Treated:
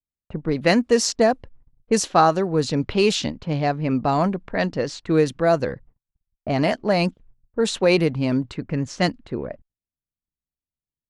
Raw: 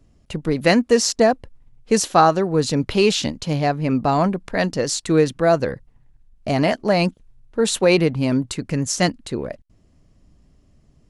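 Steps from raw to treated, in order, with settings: level-controlled noise filter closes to 920 Hz, open at -12 dBFS; gate -45 dBFS, range -41 dB; trim -2 dB

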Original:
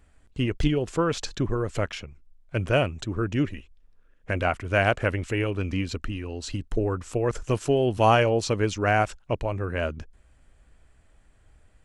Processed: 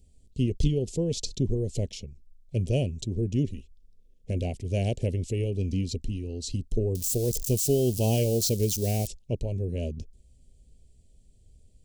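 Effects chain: 6.95–9.07 s: zero-crossing glitches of -24 dBFS; Chebyshev band-stop 360–4700 Hz, order 2; peaking EQ 310 Hz -12.5 dB 0.21 oct; trim +2 dB

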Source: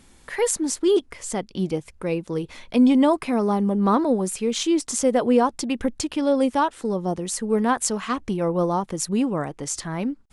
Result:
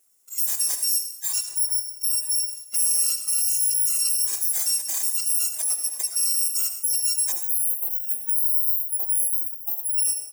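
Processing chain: bit-reversed sample order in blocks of 256 samples; 7.32–9.98 s: inverse Chebyshev band-stop 2.1–5.8 kHz, stop band 60 dB; spectral noise reduction 19 dB; high-pass 330 Hz 24 dB/octave; resonant high shelf 5.1 kHz +10.5 dB, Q 1.5; compression, threshold -18 dBFS, peak gain reduction 15.5 dB; peak limiter -15 dBFS, peak gain reduction 7.5 dB; echo from a far wall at 170 m, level -10 dB; reverberation RT60 0.70 s, pre-delay 64 ms, DRR 7.5 dB

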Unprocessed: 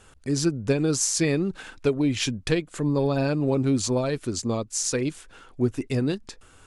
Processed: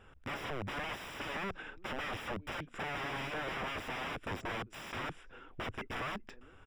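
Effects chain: speakerphone echo 390 ms, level -29 dB; integer overflow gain 27.5 dB; Savitzky-Golay filter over 25 samples; trim -4.5 dB

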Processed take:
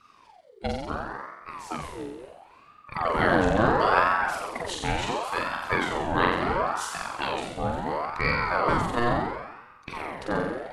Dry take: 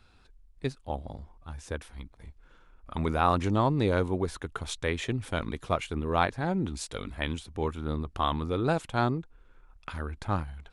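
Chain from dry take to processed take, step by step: coarse spectral quantiser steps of 15 dB; flutter echo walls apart 7.7 m, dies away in 1.1 s; ring modulator with a swept carrier 790 Hz, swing 55%, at 0.72 Hz; trim +3.5 dB

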